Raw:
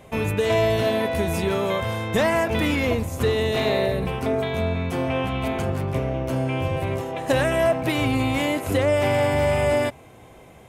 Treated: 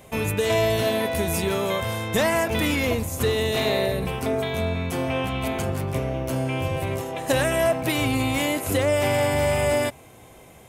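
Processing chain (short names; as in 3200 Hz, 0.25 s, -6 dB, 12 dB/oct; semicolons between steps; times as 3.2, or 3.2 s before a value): high shelf 5000 Hz +10.5 dB; gain -1.5 dB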